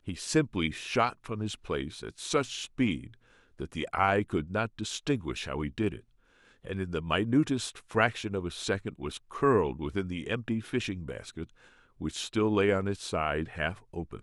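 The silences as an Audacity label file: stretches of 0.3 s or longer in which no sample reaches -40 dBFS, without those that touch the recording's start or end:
3.070000	3.600000	silence
5.970000	6.650000	silence
11.440000	12.010000	silence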